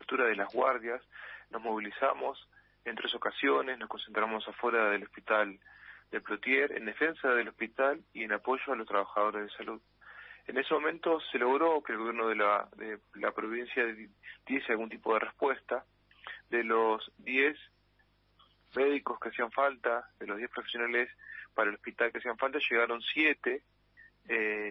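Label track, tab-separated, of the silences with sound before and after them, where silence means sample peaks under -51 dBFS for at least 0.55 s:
17.660000	18.400000	silence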